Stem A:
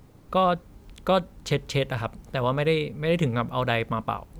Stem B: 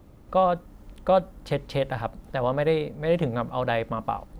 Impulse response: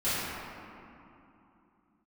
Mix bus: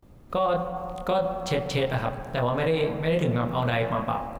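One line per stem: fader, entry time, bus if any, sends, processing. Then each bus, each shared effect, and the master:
-1.0 dB, 0.00 s, no send, gate with hold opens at -39 dBFS
-2.0 dB, 25 ms, send -16.5 dB, none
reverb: on, RT60 2.8 s, pre-delay 4 ms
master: peak limiter -15.5 dBFS, peak gain reduction 9 dB

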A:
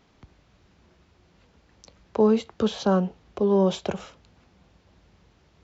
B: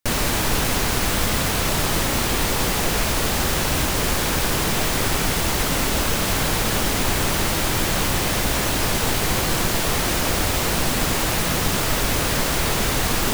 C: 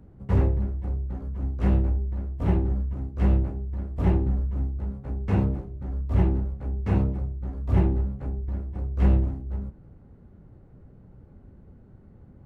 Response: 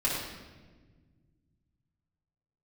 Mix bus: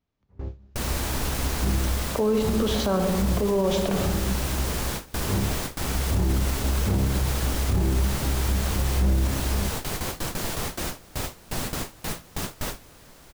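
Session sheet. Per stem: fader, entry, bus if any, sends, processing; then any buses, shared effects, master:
-5.5 dB, 0.00 s, send -13 dB, none
-18.5 dB, 0.70 s, no send, peaking EQ 2.4 kHz -2.5 dB 1.6 oct
-14.0 dB, 0.00 s, no send, low-pass 1.8 kHz 6 dB/octave; level rider gain up to 11 dB; auto duck -8 dB, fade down 0.45 s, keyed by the first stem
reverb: on, RT60 1.4 s, pre-delay 3 ms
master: gate with hold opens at -28 dBFS; level rider gain up to 11 dB; peak limiter -15 dBFS, peak gain reduction 11.5 dB

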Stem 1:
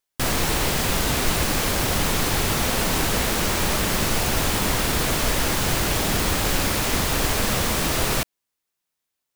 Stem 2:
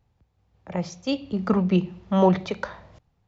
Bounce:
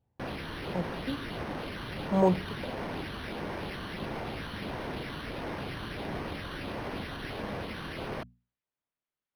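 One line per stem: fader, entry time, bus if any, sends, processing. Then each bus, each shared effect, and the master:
-10.5 dB, 0.00 s, no send, hum notches 60/120/180/240 Hz
-5.5 dB, 0.00 s, muted 1.27–2.02 s, no send, none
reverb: none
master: comb of notches 1.3 kHz; phase shifter stages 8, 1.5 Hz, lowest notch 620–4800 Hz; decimation joined by straight lines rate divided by 6×

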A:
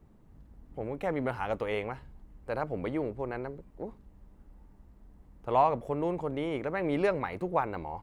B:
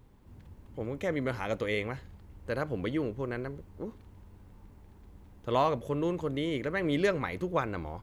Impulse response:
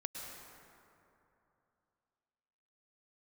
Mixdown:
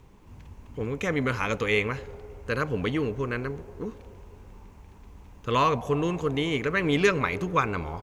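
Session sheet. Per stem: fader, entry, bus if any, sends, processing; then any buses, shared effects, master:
-3.0 dB, 0.00 s, send -8.5 dB, peaking EQ 410 Hz +10 dB 0.29 oct
+3.0 dB, 0.4 ms, no send, fifteen-band graphic EQ 1 kHz +6 dB, 2.5 kHz +8 dB, 6.3 kHz +8 dB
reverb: on, RT60 2.9 s, pre-delay 97 ms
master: none

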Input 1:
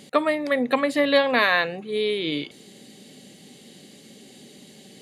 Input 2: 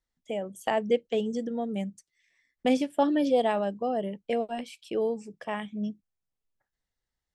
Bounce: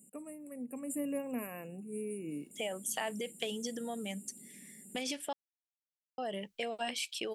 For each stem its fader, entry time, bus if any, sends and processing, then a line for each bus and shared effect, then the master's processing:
0.70 s -13.5 dB -> 0.96 s -6.5 dB, 0.00 s, no send, FFT filter 130 Hz 0 dB, 200 Hz +9 dB, 1.8 kHz -29 dB, 8.2 kHz +10 dB; FFT band-reject 2.9–7 kHz; treble shelf 2.6 kHz -9 dB
+2.5 dB, 2.30 s, muted 5.33–6.18 s, no send, peak limiter -25.5 dBFS, peak gain reduction 13 dB; compression, threshold -32 dBFS, peak gain reduction 4.5 dB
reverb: none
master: tilt shelf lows -9 dB

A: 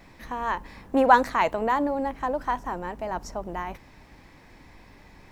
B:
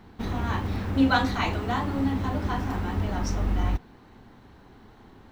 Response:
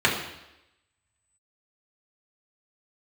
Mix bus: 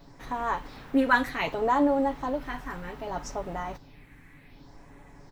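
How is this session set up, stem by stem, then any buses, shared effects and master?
-1.5 dB, 0.00 s, no send, comb 7.1 ms; phase shifter stages 4, 0.65 Hz, lowest notch 740–4300 Hz
-8.0 dB, 0.8 ms, polarity flipped, no send, high-pass 680 Hz 12 dB/octave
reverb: none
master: none

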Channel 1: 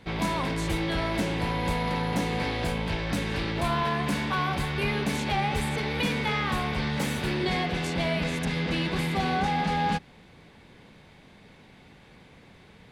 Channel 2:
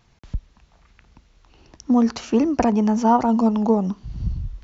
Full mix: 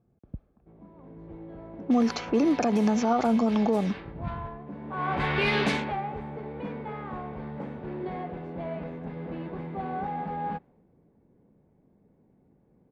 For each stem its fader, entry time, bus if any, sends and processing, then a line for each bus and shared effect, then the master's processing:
5.66 s -0.5 dB -> 5.99 s -10.5 dB, 0.60 s, no send, level rider gain up to 8 dB; auto duck -16 dB, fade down 0.75 s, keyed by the second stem
+2.5 dB, 0.00 s, no send, comb of notches 960 Hz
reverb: none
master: level-controlled noise filter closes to 350 Hz, open at -13 dBFS; bass shelf 180 Hz -11.5 dB; peak limiter -15.5 dBFS, peak gain reduction 9.5 dB

